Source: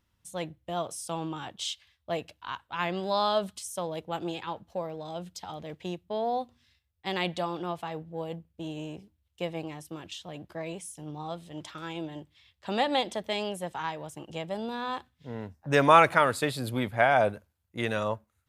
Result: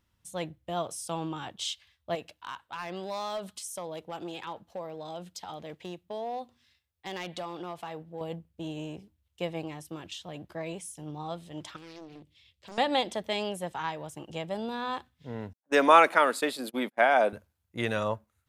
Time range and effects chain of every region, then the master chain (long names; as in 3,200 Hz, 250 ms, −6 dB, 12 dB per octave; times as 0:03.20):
0:02.15–0:08.21: downward compressor 2 to 1, threshold −34 dBFS + gain into a clipping stage and back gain 28.5 dB + low-shelf EQ 140 Hz −9.5 dB
0:11.76–0:12.78: flat-topped bell 1,100 Hz −9.5 dB + downward compressor 2 to 1, threshold −48 dBFS + highs frequency-modulated by the lows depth 0.84 ms
0:15.53–0:17.33: Butterworth high-pass 220 Hz + noise gate −39 dBFS, range −33 dB
whole clip: no processing